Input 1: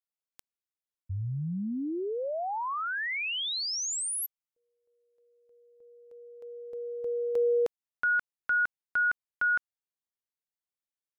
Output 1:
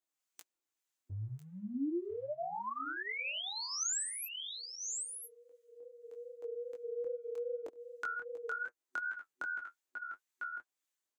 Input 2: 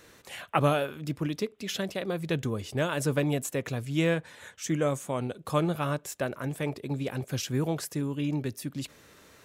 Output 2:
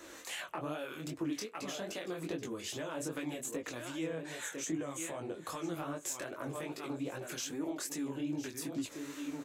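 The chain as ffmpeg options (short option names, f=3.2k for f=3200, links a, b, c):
-filter_complex "[0:a]aecho=1:1:999:0.188,acompressor=threshold=-35dB:ratio=4:attack=0.52:release=169:knee=6:detection=rms,acrossover=split=1100[a][b];[a]aeval=exprs='val(0)*(1-0.5/2+0.5/2*cos(2*PI*1.7*n/s))':c=same[c];[b]aeval=exprs='val(0)*(1-0.5/2-0.5/2*cos(2*PI*1.7*n/s))':c=same[d];[c][d]amix=inputs=2:normalize=0,bass=f=250:g=-13,treble=f=4k:g=-1,flanger=delay=3:depth=9.2:regen=-41:speed=0.26:shape=triangular,acrossover=split=180[e][f];[f]acompressor=threshold=-59dB:ratio=2:attack=75:release=62:knee=2.83:detection=peak[g];[e][g]amix=inputs=2:normalize=0,flanger=delay=17.5:depth=7.6:speed=2.5,superequalizer=6b=2:15b=1.78,volume=14dB"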